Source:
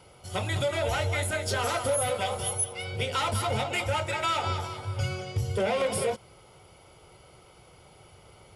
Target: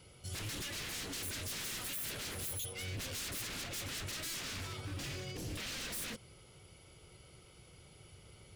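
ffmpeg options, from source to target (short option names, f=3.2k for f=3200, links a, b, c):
-af "aeval=exprs='0.0224*(abs(mod(val(0)/0.0224+3,4)-2)-1)':c=same,equalizer=f=840:w=0.85:g=-12,volume=-1.5dB"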